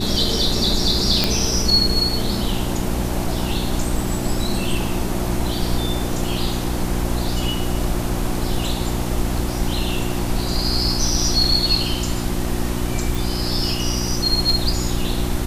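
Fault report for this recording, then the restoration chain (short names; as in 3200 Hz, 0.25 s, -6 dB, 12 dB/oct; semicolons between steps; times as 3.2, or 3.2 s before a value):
hum 60 Hz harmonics 6 -25 dBFS
1.24 pop -1 dBFS
13.15 pop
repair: de-click; de-hum 60 Hz, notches 6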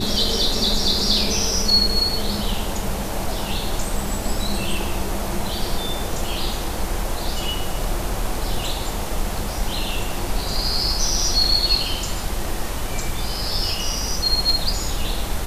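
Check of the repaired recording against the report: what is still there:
none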